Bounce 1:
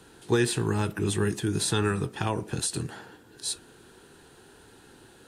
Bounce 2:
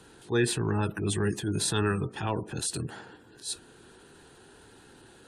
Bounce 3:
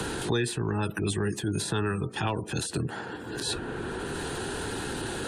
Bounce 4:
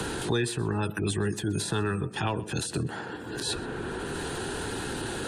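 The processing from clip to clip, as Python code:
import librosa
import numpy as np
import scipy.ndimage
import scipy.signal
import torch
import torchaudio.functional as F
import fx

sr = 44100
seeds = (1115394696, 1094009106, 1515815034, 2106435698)

y1 = fx.spec_gate(x, sr, threshold_db=-30, keep='strong')
y1 = fx.transient(y1, sr, attack_db=-8, sustain_db=-1)
y2 = fx.band_squash(y1, sr, depth_pct=100)
y3 = fx.echo_feedback(y2, sr, ms=127, feedback_pct=26, wet_db=-21)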